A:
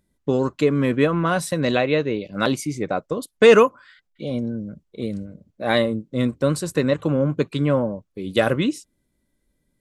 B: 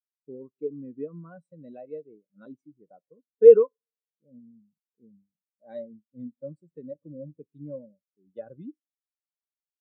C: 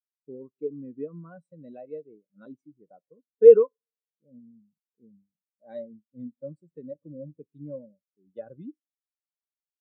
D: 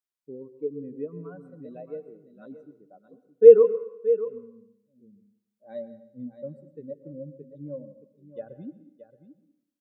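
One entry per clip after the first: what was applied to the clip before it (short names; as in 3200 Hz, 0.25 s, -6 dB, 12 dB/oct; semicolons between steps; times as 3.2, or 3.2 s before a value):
two-slope reverb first 0.61 s, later 3 s, from -18 dB, DRR 18.5 dB; spectral expander 2.5:1
nothing audible
echo 0.623 s -12.5 dB; plate-style reverb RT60 0.75 s, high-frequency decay 0.95×, pre-delay 0.1 s, DRR 13 dB; gain +1 dB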